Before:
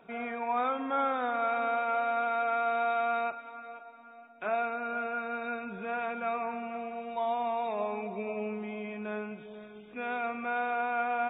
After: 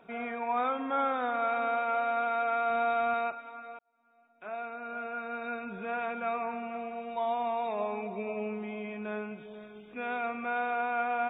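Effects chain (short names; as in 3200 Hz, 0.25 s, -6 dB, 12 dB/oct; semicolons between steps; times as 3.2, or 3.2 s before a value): 2.7–3.14 low shelf 220 Hz +9 dB; 3.79–5.7 fade in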